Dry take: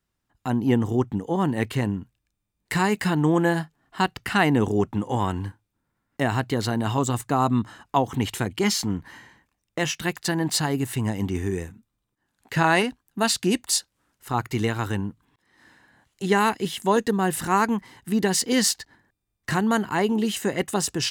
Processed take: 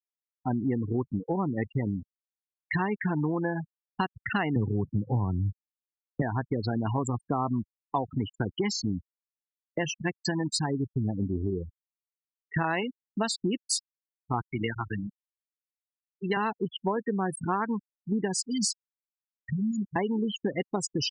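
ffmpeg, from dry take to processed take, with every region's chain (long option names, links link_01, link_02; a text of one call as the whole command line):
ffmpeg -i in.wav -filter_complex "[0:a]asettb=1/sr,asplit=3[link_01][link_02][link_03];[link_01]atrim=end=4.564[link_04];[link_02]atrim=start=4.56:end=6.22,asetpts=PTS-STARTPTS,afade=type=in:duration=0.004:curve=qsin,afade=type=out:start_time=1.656:duration=0.004:curve=qsin,lowpass=1300,equalizer=frequency=120:width=0.76:gain=14[link_05];[link_03]atrim=start=6.216[link_06];[link_04][link_05]acrossfade=duration=0.004:curve1=hsin:curve2=qsin[link_07];[link_07][link_06]acrossfade=duration=0.004:curve1=qsin:curve2=hsin,asettb=1/sr,asplit=3[link_08][link_09][link_10];[link_08]atrim=end=14.474[link_11];[link_09]atrim=start=14.47:end=16.37,asetpts=PTS-STARTPTS,afade=type=in:duration=0.004:curve=qsin,afade=type=out:start_time=1.896:duration=0.004:curve=qsin,highpass=frequency=100:width=0.5412,highpass=frequency=100:width=1.3066,tremolo=f=47:d=0.261,tiltshelf=frequency=1200:gain=-4.5[link_12];[link_10]atrim=start=16.366[link_13];[link_11][link_12]acrossfade=duration=0.004:curve1=hsin:curve2=qsin[link_14];[link_14][link_13]acrossfade=duration=0.004:curve1=qsin:curve2=hsin,asettb=1/sr,asplit=3[link_15][link_16][link_17];[link_15]atrim=end=18.354[link_18];[link_16]atrim=start=18.35:end=19.96,asetpts=PTS-STARTPTS,afade=type=in:duration=0.004:curve=qsin,afade=type=out:start_time=1.606:duration=0.004:curve=qsin,aecho=1:1:4.8:0.33,atrim=end_sample=71001,acrossover=split=220|3000[link_19][link_20][link_21];[link_20]acompressor=threshold=-30dB:ratio=4:attack=3.2:release=140:knee=2.83:detection=peak[link_22];[link_19][link_22][link_21]amix=inputs=3:normalize=0,equalizer=frequency=800:width=0.46:gain=-9.5[link_23];[link_17]atrim=start=19.956[link_24];[link_18][link_23]acrossfade=duration=0.004:curve1=hsin:curve2=qsin[link_25];[link_25][link_24]acrossfade=duration=0.004:curve1=qsin:curve2=hsin,afftfilt=real='re*gte(hypot(re,im),0.1)':imag='im*gte(hypot(re,im),0.1)':win_size=1024:overlap=0.75,anlmdn=0.1,acompressor=threshold=-26dB:ratio=6,volume=1dB" out.wav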